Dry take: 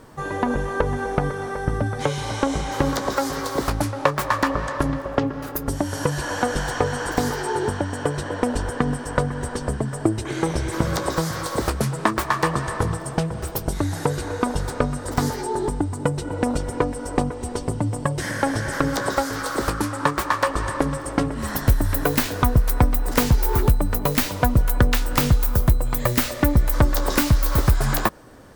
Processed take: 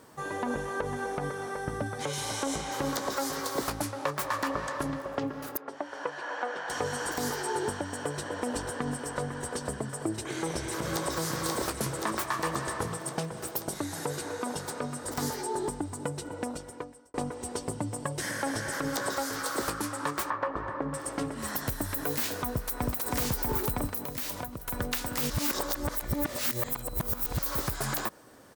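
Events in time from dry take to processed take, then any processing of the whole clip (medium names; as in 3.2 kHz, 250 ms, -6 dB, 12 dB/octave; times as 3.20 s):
2.13–2.56 s: treble shelf 7 kHz +9 dB
5.57–6.70 s: band-pass 490–2300 Hz
7.87–8.41 s: echo throw 490 ms, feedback 80%, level -9.5 dB
10.10–11.13 s: echo throw 530 ms, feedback 70%, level -5.5 dB
12.88–15.03 s: high-pass 110 Hz
16.03–17.14 s: fade out
20.30–20.94 s: low-pass 1.5 kHz
22.48–22.93 s: echo throw 320 ms, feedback 80%, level -1 dB
23.90–24.68 s: compression 10:1, threshold -24 dBFS
25.30–27.39 s: reverse
whole clip: high-pass 200 Hz 6 dB/octave; treble shelf 5.5 kHz +7 dB; peak limiter -12 dBFS; trim -6.5 dB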